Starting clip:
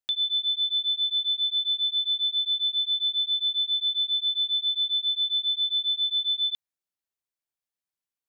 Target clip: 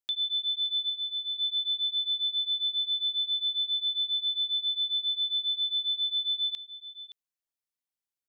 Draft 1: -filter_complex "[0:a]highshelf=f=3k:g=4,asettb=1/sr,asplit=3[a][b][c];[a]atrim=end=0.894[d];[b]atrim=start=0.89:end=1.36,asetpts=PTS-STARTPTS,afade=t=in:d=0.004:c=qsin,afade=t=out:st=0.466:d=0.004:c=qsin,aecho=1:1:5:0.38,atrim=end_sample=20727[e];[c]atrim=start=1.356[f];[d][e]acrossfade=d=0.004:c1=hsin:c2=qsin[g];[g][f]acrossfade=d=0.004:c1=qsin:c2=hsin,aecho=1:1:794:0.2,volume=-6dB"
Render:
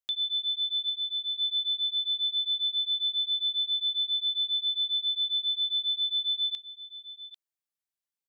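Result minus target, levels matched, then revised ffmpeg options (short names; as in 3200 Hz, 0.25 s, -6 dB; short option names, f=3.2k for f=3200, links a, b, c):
echo 0.225 s late
-filter_complex "[0:a]highshelf=f=3k:g=4,asettb=1/sr,asplit=3[a][b][c];[a]atrim=end=0.894[d];[b]atrim=start=0.89:end=1.36,asetpts=PTS-STARTPTS,afade=t=in:d=0.004:c=qsin,afade=t=out:st=0.466:d=0.004:c=qsin,aecho=1:1:5:0.38,atrim=end_sample=20727[e];[c]atrim=start=1.356[f];[d][e]acrossfade=d=0.004:c1=hsin:c2=qsin[g];[g][f]acrossfade=d=0.004:c1=qsin:c2=hsin,aecho=1:1:569:0.2,volume=-6dB"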